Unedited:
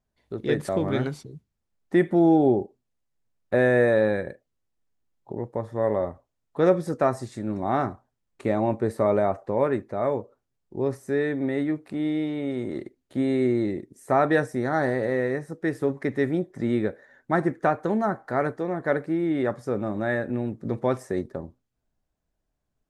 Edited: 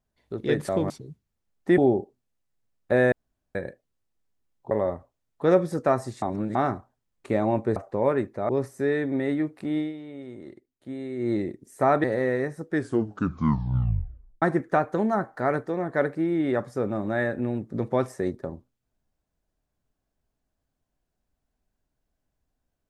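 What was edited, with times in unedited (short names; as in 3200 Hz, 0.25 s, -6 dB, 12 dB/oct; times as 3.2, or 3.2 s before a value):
0.9–1.15 cut
2.03–2.4 cut
3.74–4.17 room tone
5.33–5.86 cut
7.37–7.7 reverse
8.91–9.31 cut
10.04–10.78 cut
12.07–13.61 dip -11 dB, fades 0.15 s
14.33–14.95 cut
15.61 tape stop 1.72 s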